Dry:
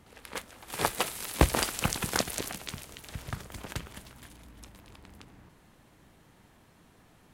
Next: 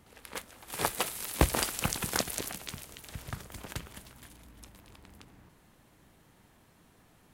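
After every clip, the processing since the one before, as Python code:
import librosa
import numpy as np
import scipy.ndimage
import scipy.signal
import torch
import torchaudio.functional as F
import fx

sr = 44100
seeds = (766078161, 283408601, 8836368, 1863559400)

y = fx.high_shelf(x, sr, hz=9900.0, db=6.0)
y = y * 10.0 ** (-2.5 / 20.0)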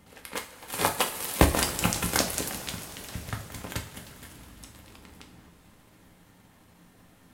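y = fx.transient(x, sr, attack_db=2, sustain_db=-7)
y = fx.rev_double_slope(y, sr, seeds[0], early_s=0.34, late_s=4.9, knee_db=-18, drr_db=2.0)
y = y * 10.0 ** (2.5 / 20.0)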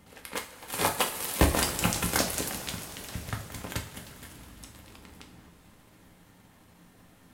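y = 10.0 ** (-11.0 / 20.0) * np.tanh(x / 10.0 ** (-11.0 / 20.0))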